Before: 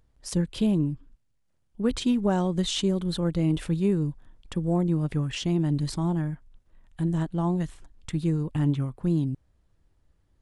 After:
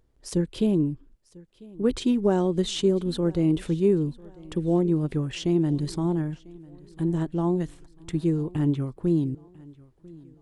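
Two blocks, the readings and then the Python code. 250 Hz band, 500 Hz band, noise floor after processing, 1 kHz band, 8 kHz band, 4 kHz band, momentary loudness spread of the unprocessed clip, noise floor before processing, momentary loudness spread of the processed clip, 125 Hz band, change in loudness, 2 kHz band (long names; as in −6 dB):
+1.5 dB, +5.5 dB, −61 dBFS, −1.0 dB, −2.0 dB, −2.0 dB, 7 LU, −70 dBFS, 10 LU, −1.0 dB, +1.5 dB, −2.0 dB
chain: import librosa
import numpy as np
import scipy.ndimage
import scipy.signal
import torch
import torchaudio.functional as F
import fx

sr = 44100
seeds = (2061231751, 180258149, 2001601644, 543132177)

y = fx.peak_eq(x, sr, hz=380.0, db=9.0, octaves=0.85)
y = fx.echo_feedback(y, sr, ms=996, feedback_pct=42, wet_db=-23)
y = y * librosa.db_to_amplitude(-2.0)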